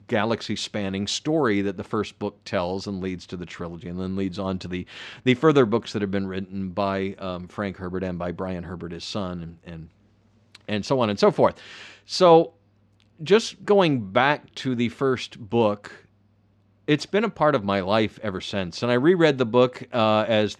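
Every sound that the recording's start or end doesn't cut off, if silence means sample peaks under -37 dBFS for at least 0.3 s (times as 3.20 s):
10.55–12.48 s
13.21–15.96 s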